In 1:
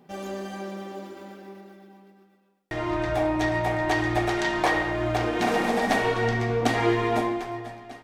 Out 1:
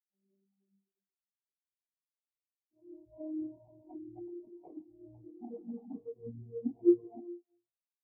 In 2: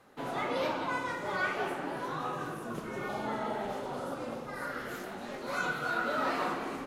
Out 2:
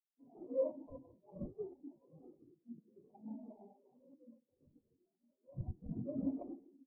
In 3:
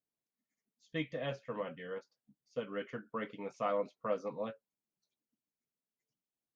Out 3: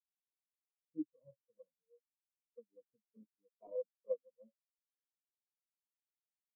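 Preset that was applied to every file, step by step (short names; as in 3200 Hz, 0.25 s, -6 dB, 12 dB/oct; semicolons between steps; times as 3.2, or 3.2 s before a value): dynamic EQ 240 Hz, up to +4 dB, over -42 dBFS, Q 1.3; sample-rate reducer 1600 Hz, jitter 20%; spectral expander 4:1; gain -5 dB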